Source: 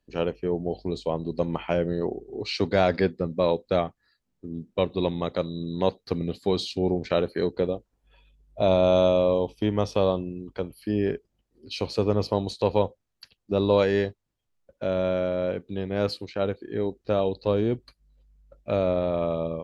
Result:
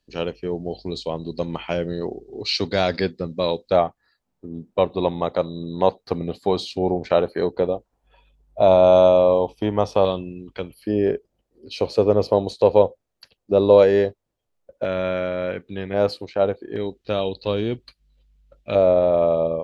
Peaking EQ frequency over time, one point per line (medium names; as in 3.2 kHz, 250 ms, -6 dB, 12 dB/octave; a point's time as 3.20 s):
peaking EQ +9.5 dB 1.4 oct
4.6 kHz
from 3.72 s 790 Hz
from 10.05 s 2.7 kHz
from 10.74 s 550 Hz
from 14.85 s 1.9 kHz
from 15.94 s 690 Hz
from 16.76 s 3.2 kHz
from 18.75 s 620 Hz